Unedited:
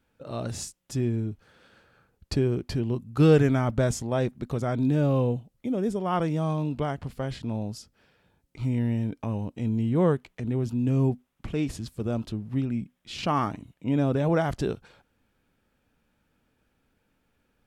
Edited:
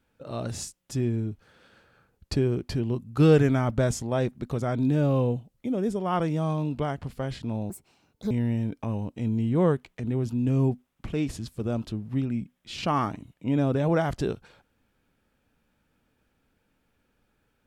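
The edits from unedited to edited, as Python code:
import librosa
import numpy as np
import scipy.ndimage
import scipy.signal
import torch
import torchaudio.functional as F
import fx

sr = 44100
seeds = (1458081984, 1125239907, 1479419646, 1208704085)

y = fx.edit(x, sr, fx.speed_span(start_s=7.7, length_s=1.01, speed=1.66), tone=tone)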